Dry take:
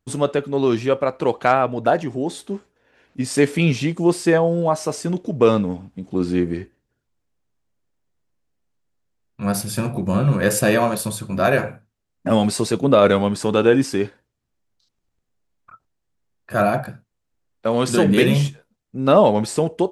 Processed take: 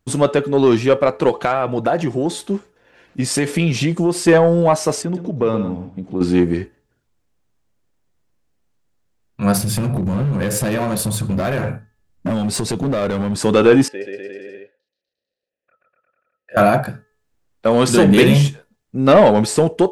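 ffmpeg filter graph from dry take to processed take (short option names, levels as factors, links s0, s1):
-filter_complex "[0:a]asettb=1/sr,asplit=3[s0][s1][s2];[s0]atrim=end=1.294[s3];[s1]atrim=start=1.29:end=4.28,asetpts=PTS-STARTPTS,afade=t=in:d=0.004:c=qsin,afade=t=out:st=2.986:d=0.004:c=qsin,aecho=1:1:5.8:0.32,atrim=end_sample=131859,acompressor=threshold=0.112:ratio=4:attack=3.2:release=140:knee=1:detection=peak[s4];[s2]atrim=start=4.276[s5];[s3][s4]acrossfade=d=0.004:c1=hsin:c2=qsin[s6];[s6][s5]acrossfade=d=0.004:c1=qsin:c2=hsin,asettb=1/sr,asplit=3[s7][s8][s9];[s7]atrim=end=5.024[s10];[s8]atrim=start=5.02:end=6.21,asetpts=PTS-STARTPTS,afade=t=in:d=0.004:c=qsin,afade=t=out:st=1.186:d=0.004:c=qsin,lowpass=f=2000:p=1,acompressor=threshold=0.02:ratio=1.5:attack=3.2:release=140:knee=1:detection=peak,aecho=1:1:124:0.316,atrim=end_sample=52479[s11];[s9]atrim=start=6.206[s12];[s10][s11]acrossfade=d=0.004:c1=hsin:c2=qsin[s13];[s13][s12]acrossfade=d=0.004:c1=qsin:c2=hsin,asettb=1/sr,asplit=3[s14][s15][s16];[s14]atrim=end=9.574[s17];[s15]atrim=start=9.57:end=13.38,asetpts=PTS-STARTPTS,afade=t=in:d=0.004:c=qsin,afade=t=out:st=3.806:d=0.004:c=qsin,lowshelf=f=200:g=10.5,acompressor=threshold=0.0891:ratio=5:attack=3.2:release=140:knee=1:detection=peak,volume=11.9,asoftclip=hard,volume=0.0841[s18];[s16]atrim=start=13.376[s19];[s17][s18]acrossfade=d=0.004:c1=hsin:c2=qsin[s20];[s20][s19]acrossfade=d=0.004:c1=qsin:c2=hsin,asettb=1/sr,asplit=3[s21][s22][s23];[s21]atrim=end=13.884[s24];[s22]atrim=start=13.88:end=16.57,asetpts=PTS-STARTPTS,afade=t=in:d=0.004:c=qsin,afade=t=out:st=2.686:d=0.004:c=qsin,asplit=3[s25][s26][s27];[s25]bandpass=f=530:t=q:w=8,volume=1[s28];[s26]bandpass=f=1840:t=q:w=8,volume=0.501[s29];[s27]bandpass=f=2480:t=q:w=8,volume=0.355[s30];[s28][s29][s30]amix=inputs=3:normalize=0,aecho=1:1:130|247|352.3|447.1|532.4|609.1:0.794|0.631|0.501|0.398|0.316|0.251,atrim=end_sample=118629[s31];[s23]atrim=start=16.566[s32];[s24][s31]acrossfade=d=0.004:c1=hsin:c2=qsin[s33];[s33][s32]acrossfade=d=0.004:c1=qsin:c2=hsin,bandreject=f=429.2:t=h:w=4,bandreject=f=858.4:t=h:w=4,bandreject=f=1287.6:t=h:w=4,bandreject=f=1716.8:t=h:w=4,acontrast=88,volume=0.891"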